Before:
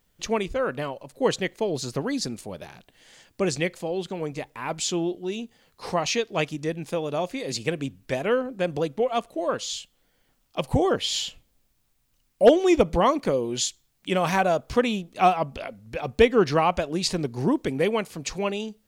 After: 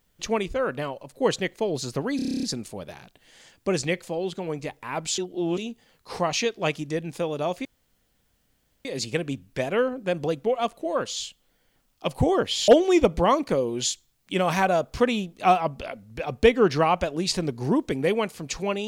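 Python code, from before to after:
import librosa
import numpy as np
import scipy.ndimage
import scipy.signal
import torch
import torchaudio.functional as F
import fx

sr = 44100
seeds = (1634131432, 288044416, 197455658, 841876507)

y = fx.edit(x, sr, fx.stutter(start_s=2.16, slice_s=0.03, count=10),
    fx.reverse_span(start_s=4.91, length_s=0.4),
    fx.insert_room_tone(at_s=7.38, length_s=1.2),
    fx.cut(start_s=11.21, length_s=1.23), tone=tone)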